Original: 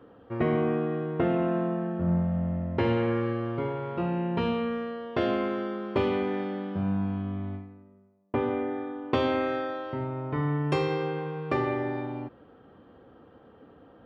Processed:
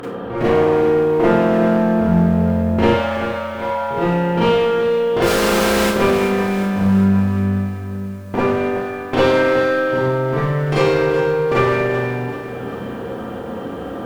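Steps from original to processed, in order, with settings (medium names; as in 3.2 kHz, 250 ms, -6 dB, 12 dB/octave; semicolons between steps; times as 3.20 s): 5.22–5.86 s: one-bit comparator; upward compressor, threshold -29 dBFS; one-sided clip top -30 dBFS; 2.89–3.91 s: brick-wall FIR high-pass 500 Hz; Schroeder reverb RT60 0.42 s, combs from 32 ms, DRR -8 dB; bit-crushed delay 382 ms, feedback 55%, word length 8-bit, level -11.5 dB; trim +5 dB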